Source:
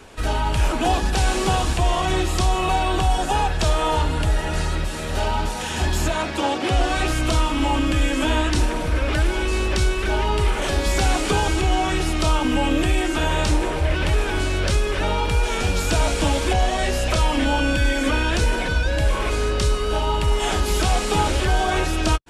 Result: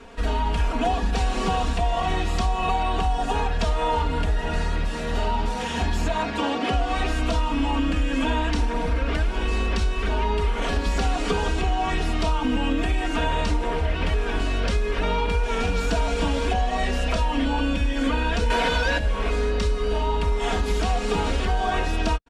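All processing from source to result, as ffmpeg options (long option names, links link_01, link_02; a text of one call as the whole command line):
ffmpeg -i in.wav -filter_complex "[0:a]asettb=1/sr,asplit=3[link_01][link_02][link_03];[link_01]atrim=end=18.504[link_04];[link_02]atrim=start=18.5:end=18.98,asetpts=PTS-STARTPTS,afade=type=in:duration=0.004:curve=qsin,afade=type=out:start_time=0.476:duration=0.004:curve=qsin,aemphasis=mode=production:type=75kf,acontrast=85,asplit=2[link_05][link_06];[link_06]highpass=frequency=720:poles=1,volume=18dB,asoftclip=type=tanh:threshold=-4.5dB[link_07];[link_05][link_07]amix=inputs=2:normalize=0,lowpass=frequency=2000:poles=1,volume=-6dB[link_08];[link_03]atrim=start=18.976[link_09];[link_04][link_08]acrossfade=duration=0.004:curve1=hsin:curve2=qsin[link_10];[link_10][link_09]acrossfade=duration=0.004:curve1=qsin:curve2=hsin,aemphasis=mode=reproduction:type=50fm,aecho=1:1:4.3:0.9,acompressor=threshold=-16dB:ratio=6,volume=-2.5dB" out.wav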